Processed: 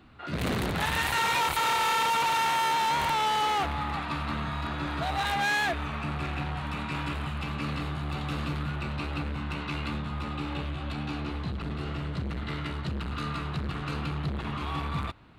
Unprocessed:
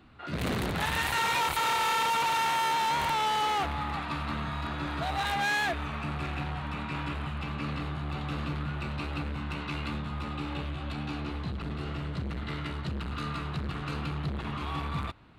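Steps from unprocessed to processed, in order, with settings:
0:06.57–0:08.76: high-shelf EQ 5,800 Hz +7.5 dB
level +1.5 dB

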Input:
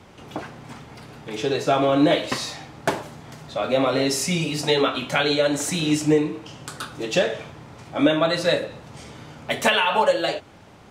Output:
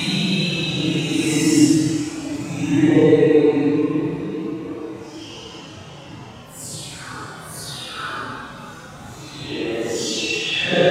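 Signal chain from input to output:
all-pass dispersion lows, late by 84 ms, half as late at 2,800 Hz
extreme stretch with random phases 7.4×, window 0.05 s, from 0:05.79
level +3 dB

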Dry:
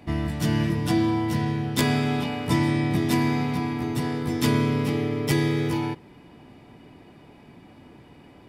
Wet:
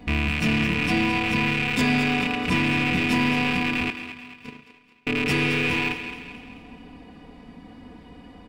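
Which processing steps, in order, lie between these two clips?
loose part that buzzes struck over −29 dBFS, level −11 dBFS
low-shelf EQ 120 Hz +9.5 dB
comb filter 4.1 ms, depth 85%
0:03.90–0:05.07: noise gate −11 dBFS, range −46 dB
on a send at −21 dB: convolution reverb RT60 1.9 s, pre-delay 86 ms
on the sum: soft clipping −8.5 dBFS, distortion −23 dB
in parallel at −1.5 dB: brickwall limiter −19.5 dBFS, peak gain reduction 10 dB
on the sum: parametric band 13,000 Hz −10 dB 0.72 octaves
feedback echo with a high-pass in the loop 217 ms, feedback 48%, high-pass 420 Hz, level −10 dB
level −5.5 dB

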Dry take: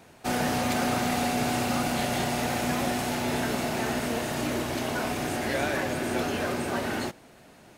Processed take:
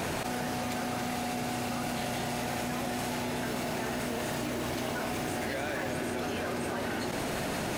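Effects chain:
0:03.45–0:05.87: background noise white −55 dBFS
envelope flattener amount 100%
level −8 dB

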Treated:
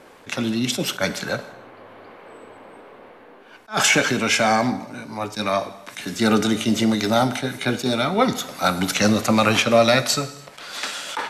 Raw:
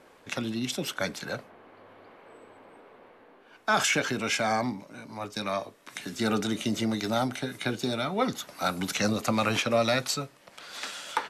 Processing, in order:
reverb whose tail is shaped and stops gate 360 ms falling, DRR 11.5 dB
level that may rise only so fast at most 290 dB per second
level +8.5 dB

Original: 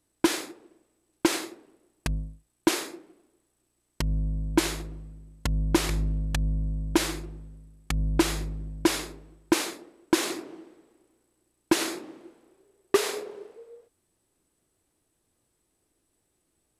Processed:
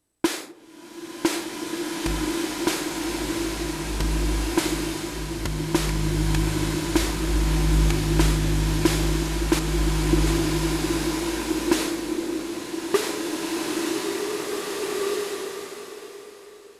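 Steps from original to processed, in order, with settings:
0:09.59–0:10.27: elliptic low-pass filter 520 Hz
slow-attack reverb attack 2,130 ms, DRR −4 dB

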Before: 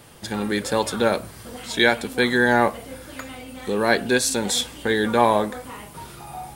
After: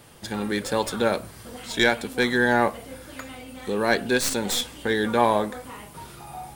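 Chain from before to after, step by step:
stylus tracing distortion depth 0.038 ms
level −2.5 dB

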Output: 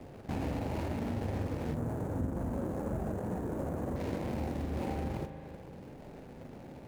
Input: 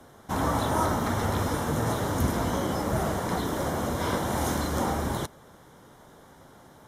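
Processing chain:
running median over 41 samples
spring reverb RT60 1.1 s, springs 38 ms, chirp 50 ms, DRR 9.5 dB
downward compressor 3 to 1, threshold −43 dBFS, peak gain reduction 16.5 dB
0:01.74–0:03.96: flat-topped bell 3,300 Hz −12 dB
flutter between parallel walls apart 7.2 metres, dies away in 0.22 s
level +6 dB

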